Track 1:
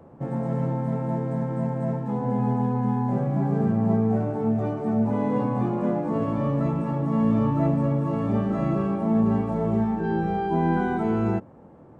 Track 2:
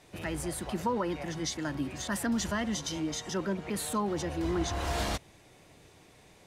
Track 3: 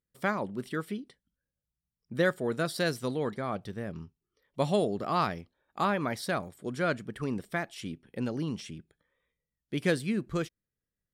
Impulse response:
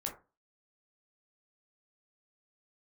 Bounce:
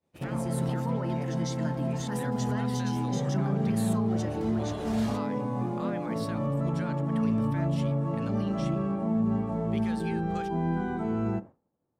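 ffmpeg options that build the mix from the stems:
-filter_complex "[0:a]acrossover=split=210|3000[link_01][link_02][link_03];[link_02]acompressor=threshold=-26dB:ratio=6[link_04];[link_01][link_04][link_03]amix=inputs=3:normalize=0,volume=-6.5dB,asplit=2[link_05][link_06];[link_06]volume=-10.5dB[link_07];[1:a]volume=-4dB,asplit=2[link_08][link_09];[link_09]volume=-13dB[link_10];[2:a]highpass=frequency=1100:poles=1,equalizer=frequency=12000:width=0.33:gain=-5.5,volume=0dB[link_11];[link_08][link_11]amix=inputs=2:normalize=0,alimiter=level_in=7.5dB:limit=-24dB:level=0:latency=1:release=135,volume=-7.5dB,volume=0dB[link_12];[3:a]atrim=start_sample=2205[link_13];[link_07][link_10]amix=inputs=2:normalize=0[link_14];[link_14][link_13]afir=irnorm=-1:irlink=0[link_15];[link_05][link_12][link_15]amix=inputs=3:normalize=0,agate=range=-33dB:threshold=-37dB:ratio=3:detection=peak"

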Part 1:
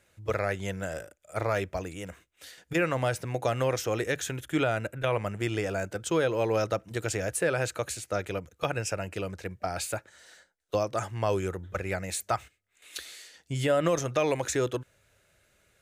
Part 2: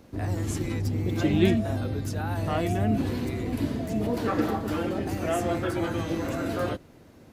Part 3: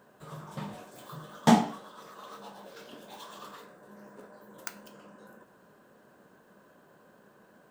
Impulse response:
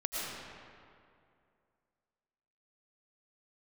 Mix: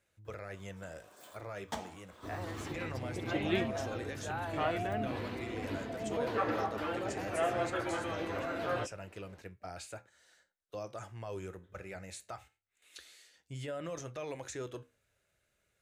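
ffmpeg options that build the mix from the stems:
-filter_complex "[0:a]acrossover=split=9500[link_01][link_02];[link_02]acompressor=threshold=-56dB:ratio=4:attack=1:release=60[link_03];[link_01][link_03]amix=inputs=2:normalize=0,alimiter=limit=-20dB:level=0:latency=1:release=12,flanger=delay=8.9:depth=8.9:regen=-72:speed=0.22:shape=triangular,volume=-7.5dB,asplit=2[link_04][link_05];[1:a]acrossover=split=460 3900:gain=0.224 1 0.2[link_06][link_07][link_08];[link_06][link_07][link_08]amix=inputs=3:normalize=0,adelay=2100,volume=-2.5dB[link_09];[2:a]highpass=frequency=800:poles=1,adelay=250,volume=-2.5dB,afade=type=out:start_time=2.86:duration=0.3:silence=0.334965[link_10];[link_05]apad=whole_len=350696[link_11];[link_10][link_11]sidechaincompress=threshold=-60dB:ratio=4:attack=16:release=163[link_12];[link_04][link_09][link_12]amix=inputs=3:normalize=0"

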